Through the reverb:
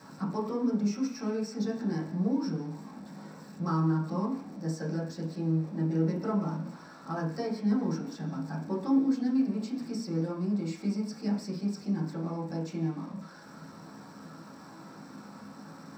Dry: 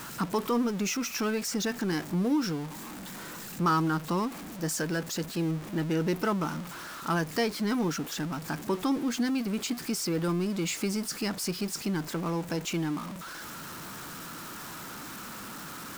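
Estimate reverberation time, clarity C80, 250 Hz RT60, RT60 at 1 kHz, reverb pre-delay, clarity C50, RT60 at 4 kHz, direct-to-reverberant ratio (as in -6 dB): 0.50 s, 10.0 dB, 0.50 s, 0.50 s, 3 ms, 7.0 dB, 0.90 s, -7.0 dB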